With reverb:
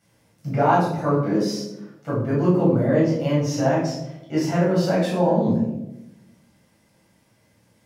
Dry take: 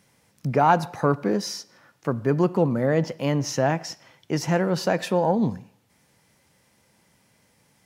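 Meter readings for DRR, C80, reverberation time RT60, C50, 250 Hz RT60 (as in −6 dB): −8.0 dB, 7.0 dB, 0.95 s, 2.5 dB, 1.2 s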